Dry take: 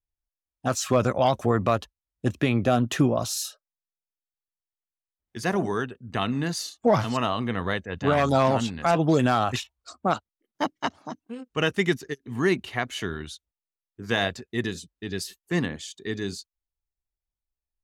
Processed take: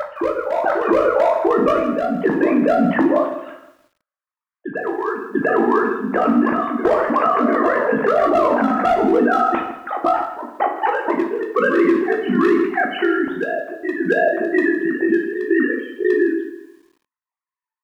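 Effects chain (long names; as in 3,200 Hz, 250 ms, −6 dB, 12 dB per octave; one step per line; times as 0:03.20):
three sine waves on the formant tracks
low-pass filter 1,800 Hz 24 dB per octave
downward compressor 2 to 1, threshold −34 dBFS, peak gain reduction 12 dB
ring modulation 26 Hz
gain into a clipping stage and back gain 26 dB
on a send: backwards echo 694 ms −8 dB
on the sum: dense smooth reverb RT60 0.65 s, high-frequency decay 0.75×, DRR 1.5 dB
boost into a limiter +25.5 dB
feedback echo at a low word length 161 ms, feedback 35%, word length 7 bits, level −14 dB
level −6.5 dB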